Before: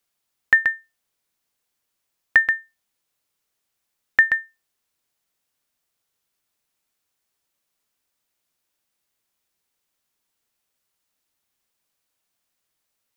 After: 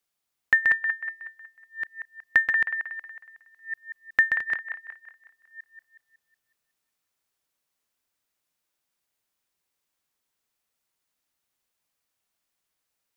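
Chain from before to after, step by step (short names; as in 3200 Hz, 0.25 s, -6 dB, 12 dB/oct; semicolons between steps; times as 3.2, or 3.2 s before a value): reverse delay 0.623 s, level -6 dB; band-limited delay 0.184 s, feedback 45%, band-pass 1200 Hz, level -6 dB; gain -4.5 dB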